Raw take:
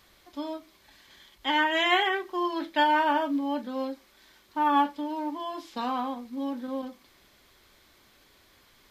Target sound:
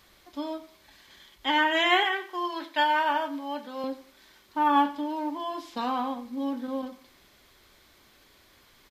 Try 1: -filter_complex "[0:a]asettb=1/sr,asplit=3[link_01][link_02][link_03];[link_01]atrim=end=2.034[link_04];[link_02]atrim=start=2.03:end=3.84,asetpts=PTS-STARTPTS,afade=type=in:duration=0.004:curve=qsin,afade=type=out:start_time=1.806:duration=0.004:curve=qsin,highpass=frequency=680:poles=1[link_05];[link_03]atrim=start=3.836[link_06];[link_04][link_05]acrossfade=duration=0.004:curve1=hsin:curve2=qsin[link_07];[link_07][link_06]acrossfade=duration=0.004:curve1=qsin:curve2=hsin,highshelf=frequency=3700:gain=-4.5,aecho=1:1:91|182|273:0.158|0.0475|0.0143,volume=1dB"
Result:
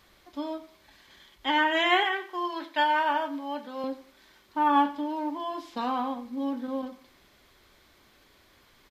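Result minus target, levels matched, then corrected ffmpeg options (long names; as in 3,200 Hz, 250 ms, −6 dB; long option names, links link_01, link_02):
8,000 Hz band −3.0 dB
-filter_complex "[0:a]asettb=1/sr,asplit=3[link_01][link_02][link_03];[link_01]atrim=end=2.034[link_04];[link_02]atrim=start=2.03:end=3.84,asetpts=PTS-STARTPTS,afade=type=in:duration=0.004:curve=qsin,afade=type=out:start_time=1.806:duration=0.004:curve=qsin,highpass=frequency=680:poles=1[link_05];[link_03]atrim=start=3.836[link_06];[link_04][link_05]acrossfade=duration=0.004:curve1=hsin:curve2=qsin[link_07];[link_07][link_06]acrossfade=duration=0.004:curve1=qsin:curve2=hsin,aecho=1:1:91|182|273:0.158|0.0475|0.0143,volume=1dB"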